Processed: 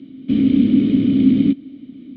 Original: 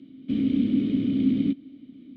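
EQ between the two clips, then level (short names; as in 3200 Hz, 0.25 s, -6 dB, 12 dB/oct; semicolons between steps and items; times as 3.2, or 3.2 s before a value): air absorption 70 m; +9.0 dB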